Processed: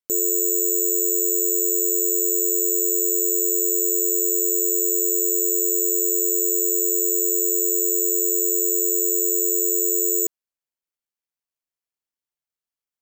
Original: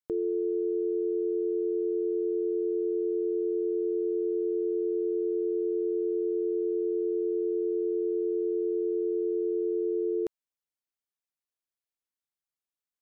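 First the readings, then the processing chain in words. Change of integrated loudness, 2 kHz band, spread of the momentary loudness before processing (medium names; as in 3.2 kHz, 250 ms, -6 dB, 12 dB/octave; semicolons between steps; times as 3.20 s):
+11.5 dB, no reading, 0 LU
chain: careless resampling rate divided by 6×, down filtered, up zero stuff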